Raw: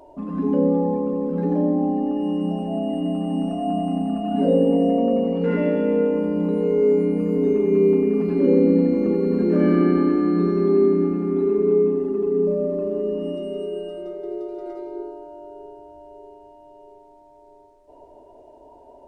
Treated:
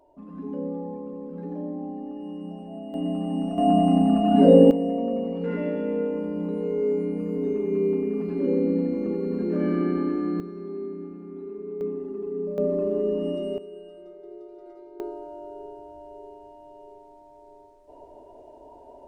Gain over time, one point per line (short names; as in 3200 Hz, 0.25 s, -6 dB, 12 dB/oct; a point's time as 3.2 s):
-12.5 dB
from 2.94 s -3.5 dB
from 3.58 s +4.5 dB
from 4.71 s -7 dB
from 10.4 s -17 dB
from 11.81 s -10 dB
from 12.58 s -0.5 dB
from 13.58 s -12.5 dB
from 15 s 0 dB